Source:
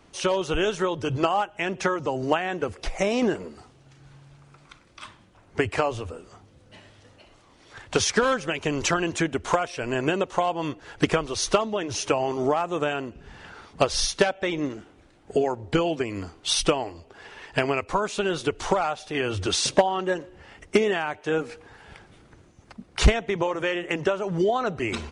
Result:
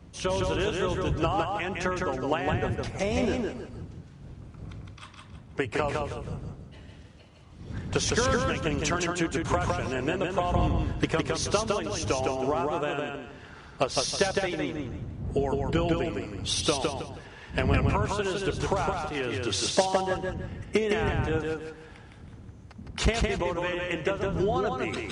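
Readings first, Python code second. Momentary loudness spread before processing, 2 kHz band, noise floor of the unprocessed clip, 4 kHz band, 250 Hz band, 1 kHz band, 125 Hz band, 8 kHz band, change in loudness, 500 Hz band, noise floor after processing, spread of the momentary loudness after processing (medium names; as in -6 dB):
13 LU, -3.0 dB, -56 dBFS, -3.0 dB, -2.0 dB, -3.0 dB, +2.5 dB, -3.0 dB, -3.0 dB, -3.0 dB, -49 dBFS, 18 LU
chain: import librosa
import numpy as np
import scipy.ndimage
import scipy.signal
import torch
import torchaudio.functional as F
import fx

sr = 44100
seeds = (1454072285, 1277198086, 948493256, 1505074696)

y = fx.dmg_wind(x, sr, seeds[0], corner_hz=120.0, level_db=-30.0)
y = scipy.signal.sosfilt(scipy.signal.butter(2, 59.0, 'highpass', fs=sr, output='sos'), y)
y = fx.echo_feedback(y, sr, ms=160, feedback_pct=31, wet_db=-3.0)
y = y * 10.0 ** (-5.0 / 20.0)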